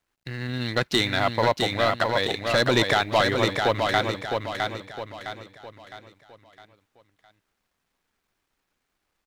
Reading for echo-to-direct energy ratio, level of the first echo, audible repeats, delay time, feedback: −3.5 dB, −4.5 dB, 4, 660 ms, 41%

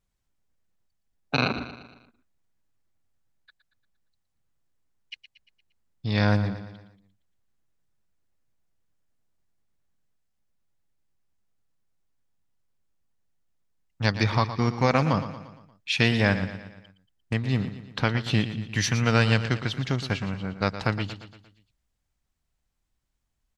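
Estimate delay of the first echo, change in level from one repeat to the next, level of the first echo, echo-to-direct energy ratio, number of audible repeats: 116 ms, −6.0 dB, −12.0 dB, −10.5 dB, 4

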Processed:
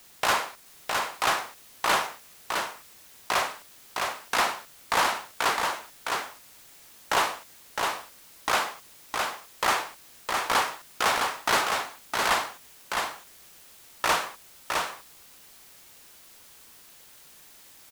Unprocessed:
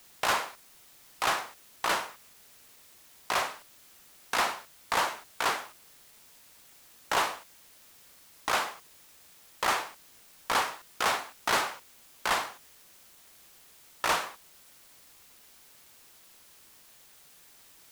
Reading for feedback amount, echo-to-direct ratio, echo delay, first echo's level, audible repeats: repeats not evenly spaced, −4.0 dB, 661 ms, −4.0 dB, 1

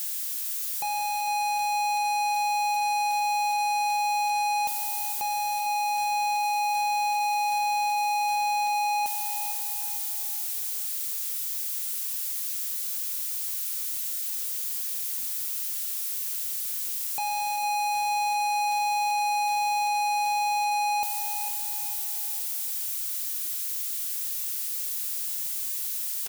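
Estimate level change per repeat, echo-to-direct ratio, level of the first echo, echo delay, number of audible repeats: −8.0 dB, −9.5 dB, −11.0 dB, 453 ms, 3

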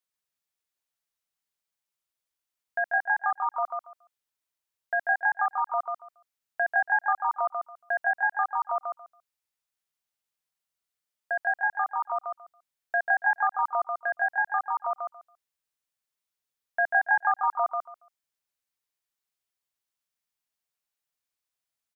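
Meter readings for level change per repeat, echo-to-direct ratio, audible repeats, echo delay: −15.0 dB, −5.0 dB, 3, 140 ms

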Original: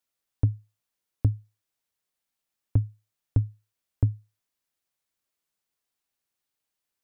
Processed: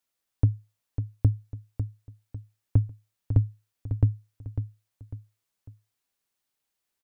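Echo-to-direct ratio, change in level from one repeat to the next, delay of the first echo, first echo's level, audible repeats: −8.5 dB, −8.5 dB, 549 ms, −9.0 dB, 3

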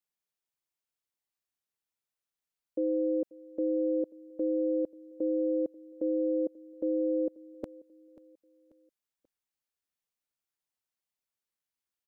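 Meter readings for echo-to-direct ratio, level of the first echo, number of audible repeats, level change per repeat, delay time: −20.5 dB, −21.5 dB, 2, −7.5 dB, 537 ms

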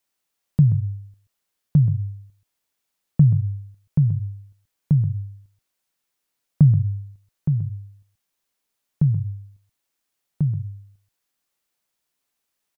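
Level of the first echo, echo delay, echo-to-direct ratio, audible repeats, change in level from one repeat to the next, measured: −12.0 dB, 130 ms, −12.0 dB, 1, repeats not evenly spaced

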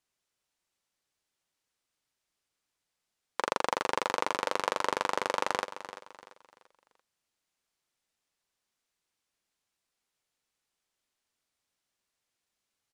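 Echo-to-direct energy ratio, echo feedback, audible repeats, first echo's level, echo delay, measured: −12.5 dB, 36%, 3, −13.0 dB, 341 ms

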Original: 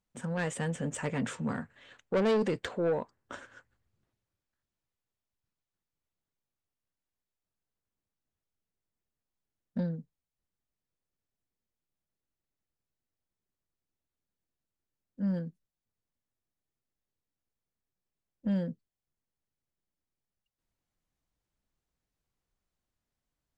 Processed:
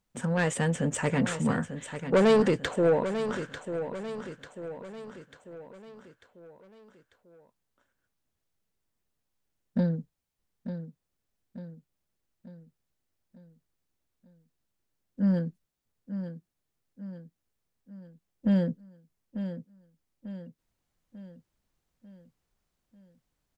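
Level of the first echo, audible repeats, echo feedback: −10.0 dB, 5, 49%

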